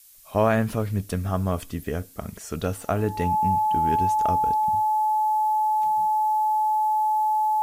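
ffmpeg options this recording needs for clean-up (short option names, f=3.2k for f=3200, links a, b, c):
-af "bandreject=f=860:w=30,afftdn=nr=29:nf=-42"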